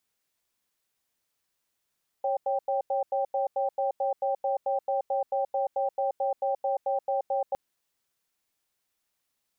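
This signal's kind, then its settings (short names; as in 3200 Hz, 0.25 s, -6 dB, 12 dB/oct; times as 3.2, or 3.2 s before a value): cadence 550 Hz, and 786 Hz, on 0.13 s, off 0.09 s, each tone -27 dBFS 5.31 s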